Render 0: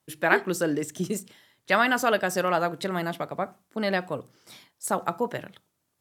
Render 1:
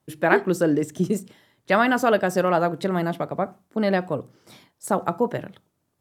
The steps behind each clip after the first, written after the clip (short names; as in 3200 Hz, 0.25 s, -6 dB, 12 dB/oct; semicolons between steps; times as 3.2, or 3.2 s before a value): tilt shelf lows +5 dB, about 1100 Hz; gain +2 dB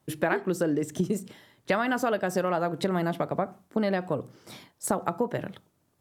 compressor 6:1, threshold -26 dBFS, peak gain reduction 13.5 dB; gain +3 dB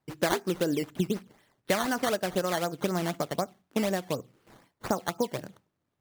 decimation with a swept rate 12×, swing 100% 4 Hz; upward expander 1.5:1, over -41 dBFS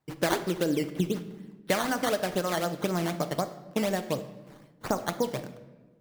shoebox room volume 810 m³, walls mixed, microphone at 0.5 m